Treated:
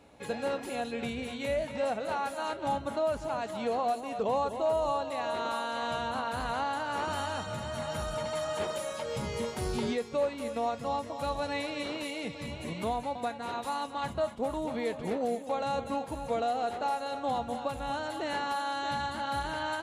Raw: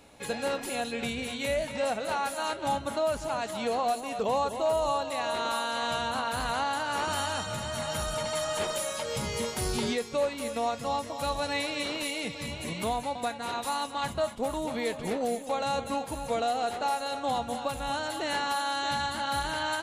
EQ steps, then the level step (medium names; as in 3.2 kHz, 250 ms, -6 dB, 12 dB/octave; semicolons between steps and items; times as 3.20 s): high-pass 48 Hz; tilt EQ -2.5 dB/octave; bass shelf 220 Hz -9 dB; -2.0 dB